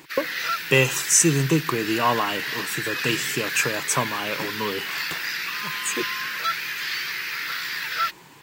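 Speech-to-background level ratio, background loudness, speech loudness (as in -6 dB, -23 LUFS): 4.0 dB, -27.5 LUFS, -23.5 LUFS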